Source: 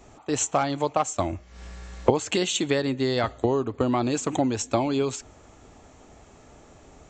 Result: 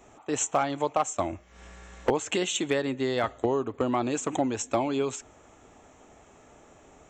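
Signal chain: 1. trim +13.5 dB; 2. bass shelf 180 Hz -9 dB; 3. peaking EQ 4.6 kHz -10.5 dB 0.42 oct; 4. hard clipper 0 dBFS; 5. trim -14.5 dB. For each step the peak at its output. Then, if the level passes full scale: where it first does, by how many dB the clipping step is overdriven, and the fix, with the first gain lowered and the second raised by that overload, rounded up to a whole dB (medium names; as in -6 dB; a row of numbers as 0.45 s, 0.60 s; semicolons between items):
+9.5 dBFS, +8.0 dBFS, +8.0 dBFS, 0.0 dBFS, -14.5 dBFS; step 1, 8.0 dB; step 1 +5.5 dB, step 5 -6.5 dB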